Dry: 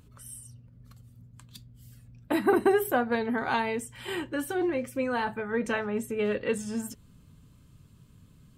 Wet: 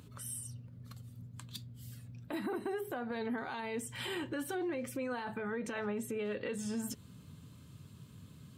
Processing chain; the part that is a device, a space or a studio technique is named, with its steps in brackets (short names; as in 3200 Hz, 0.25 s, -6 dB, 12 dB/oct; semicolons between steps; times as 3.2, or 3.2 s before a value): broadcast voice chain (HPF 80 Hz 24 dB/oct; de-esser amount 80%; compressor 4:1, threshold -34 dBFS, peak gain reduction 13.5 dB; bell 3800 Hz +3.5 dB 0.48 oct; limiter -33 dBFS, peak gain reduction 11.5 dB); gain +3 dB